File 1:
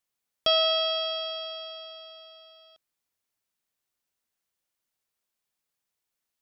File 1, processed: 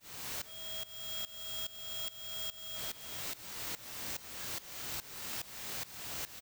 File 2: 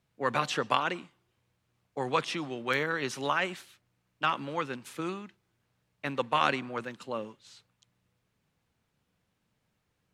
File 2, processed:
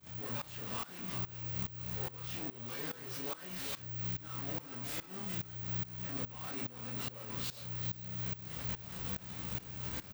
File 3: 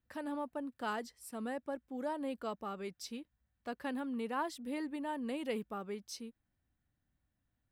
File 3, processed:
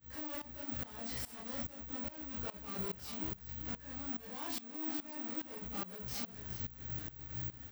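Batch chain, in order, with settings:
sign of each sample alone
low-shelf EQ 140 Hz +11 dB
double-tracking delay 33 ms −3 dB
on a send: single-tap delay 411 ms −7.5 dB
on the sum: output level in coarse steps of 22 dB
downward expander −33 dBFS
high-pass filter 51 Hz
ambience of single reflections 16 ms −4 dB, 26 ms −4 dB
bad sample-rate conversion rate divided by 2×, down none, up zero stuff
shaped tremolo saw up 2.4 Hz, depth 90%
parametric band 11,000 Hz −8.5 dB 0.45 octaves
level +17 dB

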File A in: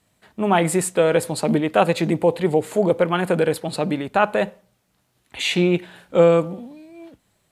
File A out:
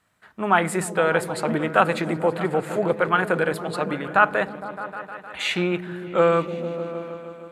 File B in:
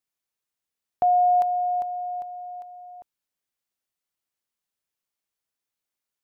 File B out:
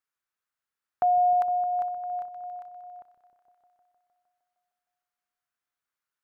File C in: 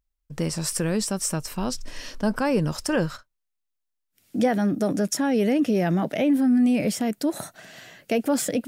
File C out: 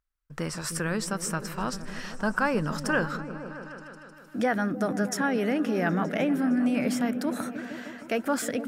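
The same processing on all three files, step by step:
parametric band 1,400 Hz +13 dB 1.2 octaves
on a send: echo whose low-pass opens from repeat to repeat 154 ms, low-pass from 200 Hz, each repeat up 1 octave, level −6 dB
on the sum: level −6.5 dB

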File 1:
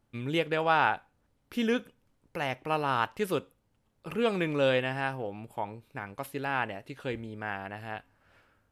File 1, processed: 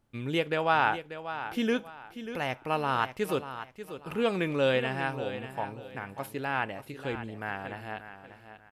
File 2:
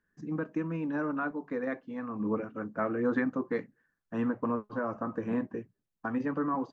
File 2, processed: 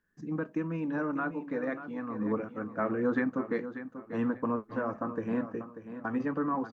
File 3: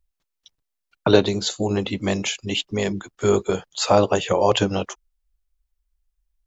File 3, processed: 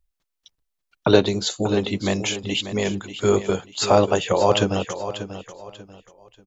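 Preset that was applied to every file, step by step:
repeating echo 589 ms, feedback 29%, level −11.5 dB

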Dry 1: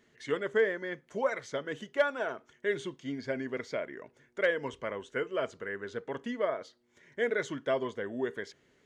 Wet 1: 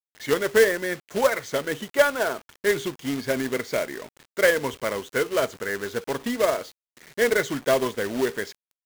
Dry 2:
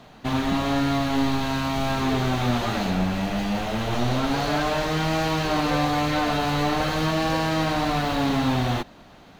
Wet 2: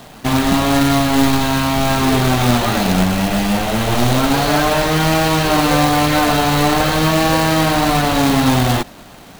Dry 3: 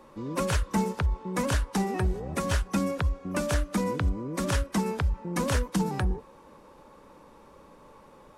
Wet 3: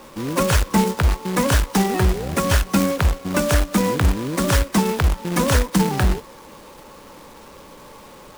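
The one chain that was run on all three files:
log-companded quantiser 4 bits
level +8.5 dB

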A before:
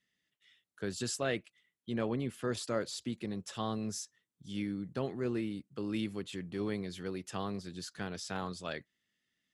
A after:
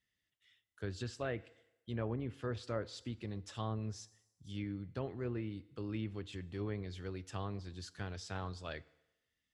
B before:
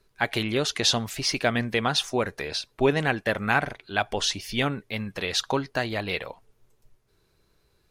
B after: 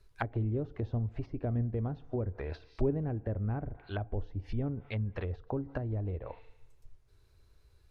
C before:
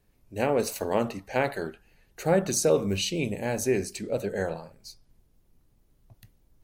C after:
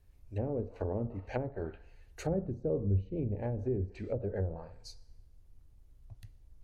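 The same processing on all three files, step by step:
low shelf with overshoot 120 Hz +10.5 dB, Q 1.5
feedback delay network reverb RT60 0.96 s, low-frequency decay 0.75×, high-frequency decay 0.9×, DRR 17.5 dB
treble cut that deepens with the level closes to 360 Hz, closed at −23.5 dBFS
level −4.5 dB

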